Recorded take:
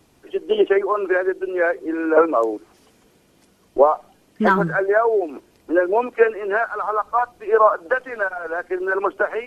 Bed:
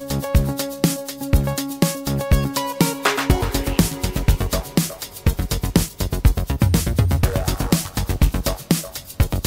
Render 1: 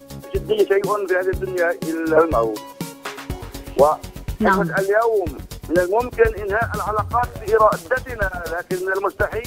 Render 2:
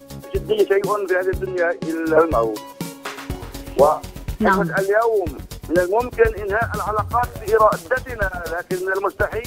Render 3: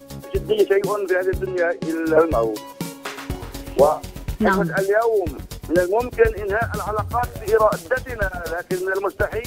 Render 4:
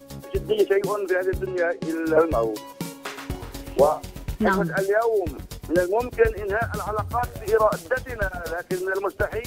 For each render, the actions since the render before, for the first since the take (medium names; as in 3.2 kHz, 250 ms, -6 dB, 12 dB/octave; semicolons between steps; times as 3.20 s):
add bed -12 dB
1.46–1.90 s: distance through air 89 m; 2.76–4.35 s: doubling 47 ms -10.5 dB; 7.07–7.64 s: treble shelf 6.9 kHz +5 dB
dynamic bell 1.1 kHz, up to -5 dB, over -33 dBFS, Q 1.9
trim -3 dB